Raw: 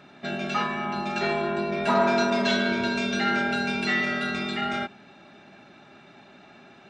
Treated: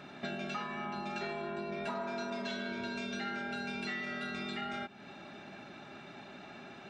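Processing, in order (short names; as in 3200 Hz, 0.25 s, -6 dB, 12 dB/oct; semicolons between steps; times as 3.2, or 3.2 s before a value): compressor 6:1, threshold -38 dBFS, peak gain reduction 19 dB; gain +1 dB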